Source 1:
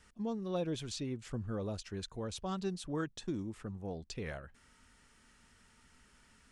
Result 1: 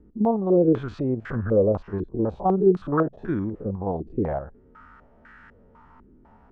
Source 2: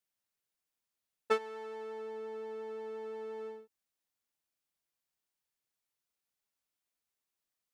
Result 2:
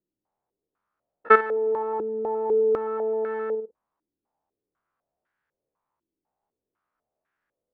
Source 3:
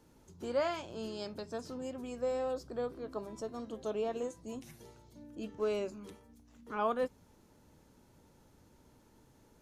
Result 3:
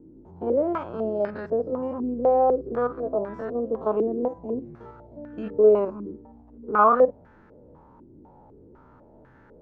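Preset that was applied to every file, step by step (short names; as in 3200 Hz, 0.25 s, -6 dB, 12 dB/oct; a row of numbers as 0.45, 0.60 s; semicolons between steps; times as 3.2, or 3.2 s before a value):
stepped spectrum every 50 ms; stepped low-pass 4 Hz 330–1600 Hz; match loudness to -24 LUFS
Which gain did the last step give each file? +13.0, +11.5, +10.0 dB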